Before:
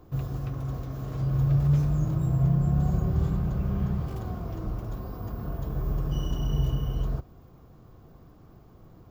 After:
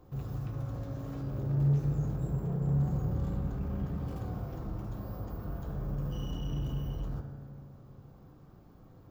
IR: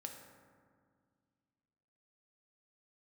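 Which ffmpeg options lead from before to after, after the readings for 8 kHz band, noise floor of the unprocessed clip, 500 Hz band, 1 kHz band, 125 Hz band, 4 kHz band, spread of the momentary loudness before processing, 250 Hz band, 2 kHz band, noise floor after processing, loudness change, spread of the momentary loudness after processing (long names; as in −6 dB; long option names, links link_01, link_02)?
can't be measured, −53 dBFS, −4.0 dB, −6.0 dB, −6.0 dB, −6.5 dB, 11 LU, −5.5 dB, −5.5 dB, −55 dBFS, −6.5 dB, 12 LU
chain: -filter_complex "[0:a]asoftclip=type=tanh:threshold=-25dB[link_01];[1:a]atrim=start_sample=2205[link_02];[link_01][link_02]afir=irnorm=-1:irlink=0"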